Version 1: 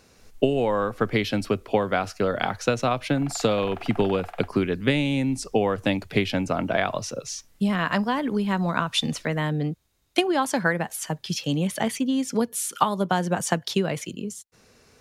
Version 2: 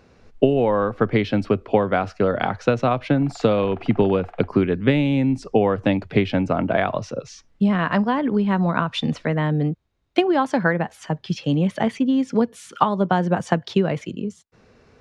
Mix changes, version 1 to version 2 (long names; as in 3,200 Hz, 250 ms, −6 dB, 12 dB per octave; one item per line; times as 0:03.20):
speech +5.5 dB
master: add head-to-tape spacing loss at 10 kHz 25 dB